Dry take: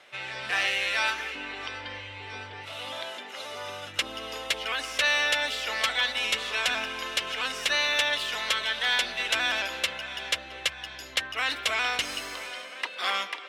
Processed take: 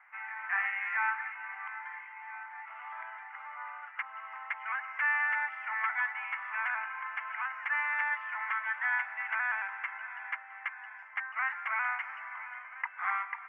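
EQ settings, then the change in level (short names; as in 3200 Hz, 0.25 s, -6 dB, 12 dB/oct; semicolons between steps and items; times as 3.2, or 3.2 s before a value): elliptic band-pass 840–2100 Hz, stop band 40 dB; air absorption 110 m; 0.0 dB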